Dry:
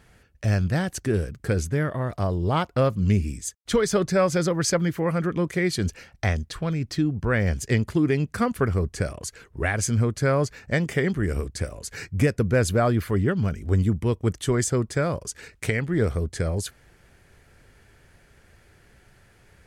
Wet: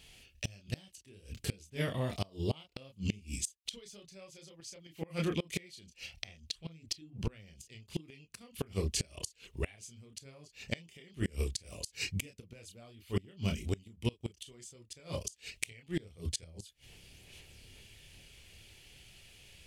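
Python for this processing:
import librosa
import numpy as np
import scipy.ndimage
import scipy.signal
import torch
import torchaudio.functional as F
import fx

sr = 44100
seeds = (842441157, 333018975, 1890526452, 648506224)

y = fx.high_shelf_res(x, sr, hz=2100.0, db=10.5, q=3.0)
y = fx.chorus_voices(y, sr, voices=6, hz=1.2, base_ms=28, depth_ms=3.0, mix_pct=40)
y = fx.gate_flip(y, sr, shuts_db=-17.0, range_db=-27)
y = y * librosa.db_to_amplitude(-3.5)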